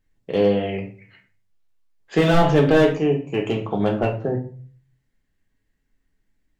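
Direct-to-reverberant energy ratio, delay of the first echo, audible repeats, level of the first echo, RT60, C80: 1.5 dB, no echo audible, no echo audible, no echo audible, 0.45 s, 15.0 dB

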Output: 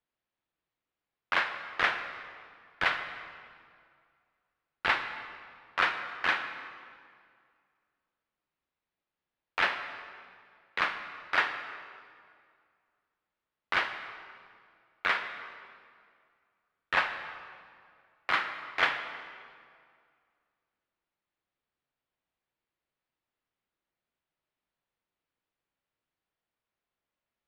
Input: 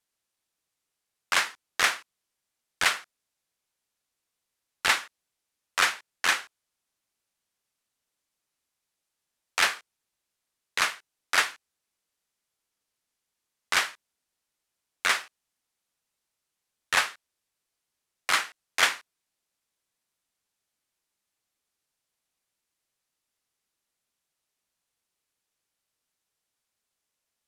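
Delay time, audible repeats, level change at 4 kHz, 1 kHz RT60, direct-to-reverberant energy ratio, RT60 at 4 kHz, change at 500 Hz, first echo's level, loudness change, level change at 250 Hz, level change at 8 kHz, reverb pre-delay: no echo audible, no echo audible, −8.0 dB, 2.1 s, 6.5 dB, 1.6 s, 0.0 dB, no echo audible, −5.0 dB, +0.5 dB, below −20 dB, 3 ms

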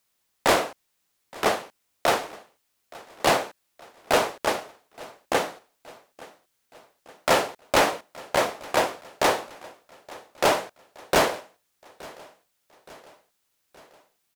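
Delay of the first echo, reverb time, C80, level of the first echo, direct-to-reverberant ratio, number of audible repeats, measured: 871 ms, no reverb audible, no reverb audible, −22.0 dB, no reverb audible, 3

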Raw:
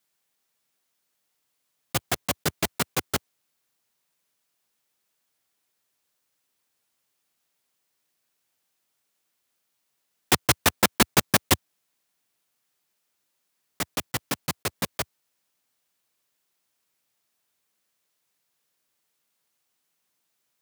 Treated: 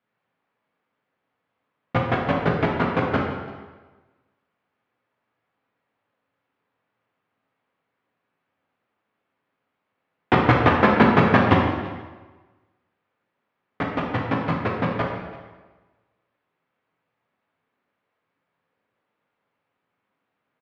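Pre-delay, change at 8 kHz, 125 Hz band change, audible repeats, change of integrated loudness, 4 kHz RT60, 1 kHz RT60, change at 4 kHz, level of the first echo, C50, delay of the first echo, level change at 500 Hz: 4 ms, below −30 dB, +9.5 dB, 1, +4.0 dB, 1.1 s, 1.3 s, −7.0 dB, −19.5 dB, 2.5 dB, 338 ms, +9.5 dB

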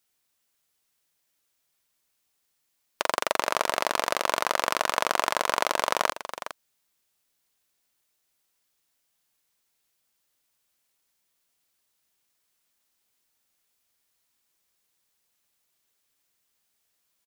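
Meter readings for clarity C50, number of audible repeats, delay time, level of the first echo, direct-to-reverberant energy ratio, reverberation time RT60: no reverb audible, 1, 412 ms, −11.0 dB, no reverb audible, no reverb audible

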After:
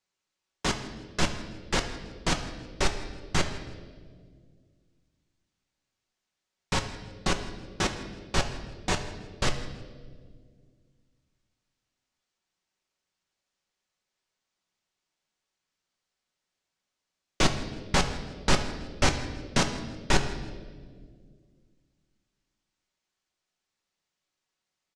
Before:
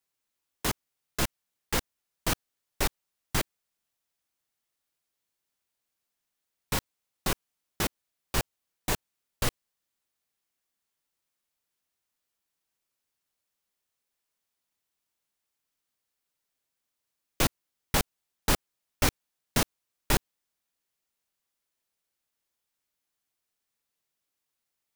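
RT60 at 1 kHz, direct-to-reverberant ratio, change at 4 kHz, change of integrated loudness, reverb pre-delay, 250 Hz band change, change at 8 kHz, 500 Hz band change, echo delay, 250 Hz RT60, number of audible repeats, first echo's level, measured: 1.4 s, 4.5 dB, +3.0 dB, +1.0 dB, 5 ms, +3.5 dB, −0.5 dB, +3.5 dB, 162 ms, 2.7 s, 2, −19.5 dB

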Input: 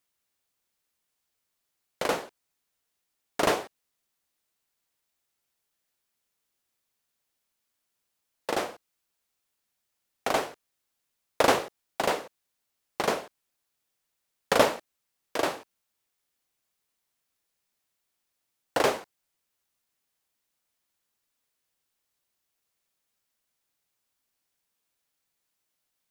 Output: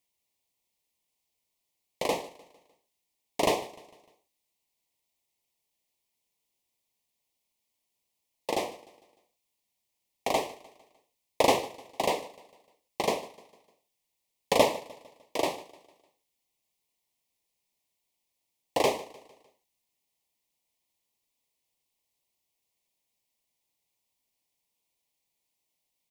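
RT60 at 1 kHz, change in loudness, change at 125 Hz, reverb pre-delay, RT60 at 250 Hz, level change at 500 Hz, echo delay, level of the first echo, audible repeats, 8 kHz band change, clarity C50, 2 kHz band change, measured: no reverb audible, −1.5 dB, −1.0 dB, no reverb audible, no reverb audible, −0.5 dB, 151 ms, −20.0 dB, 3, −1.0 dB, no reverb audible, −4.5 dB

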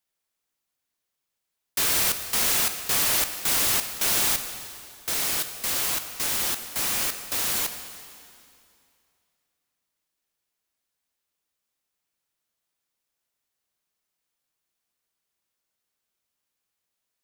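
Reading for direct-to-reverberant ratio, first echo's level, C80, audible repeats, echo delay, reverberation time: 8.0 dB, no echo audible, 9.5 dB, no echo audible, no echo audible, 2.5 s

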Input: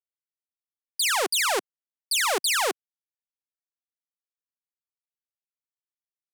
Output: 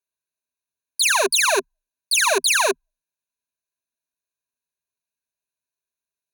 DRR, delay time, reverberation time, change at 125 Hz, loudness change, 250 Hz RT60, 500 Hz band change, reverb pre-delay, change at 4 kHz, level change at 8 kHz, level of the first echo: no reverb audible, no echo audible, no reverb audible, can't be measured, +5.5 dB, no reverb audible, +7.0 dB, no reverb audible, +4.5 dB, +6.0 dB, no echo audible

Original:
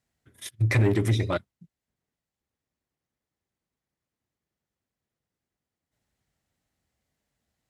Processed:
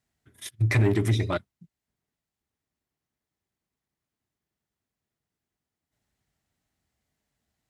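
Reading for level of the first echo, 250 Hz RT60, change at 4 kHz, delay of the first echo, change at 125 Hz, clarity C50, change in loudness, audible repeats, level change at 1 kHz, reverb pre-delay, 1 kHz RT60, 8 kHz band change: no echo audible, no reverb audible, 0.0 dB, no echo audible, 0.0 dB, no reverb audible, 0.0 dB, no echo audible, 0.0 dB, no reverb audible, no reverb audible, 0.0 dB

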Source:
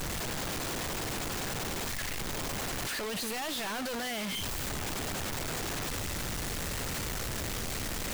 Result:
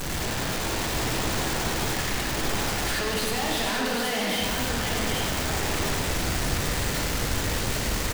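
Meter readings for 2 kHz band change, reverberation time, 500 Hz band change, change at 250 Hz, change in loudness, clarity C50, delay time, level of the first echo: +8.5 dB, 2.1 s, +8.5 dB, +8.5 dB, +7.5 dB, −1.5 dB, 783 ms, −4.5 dB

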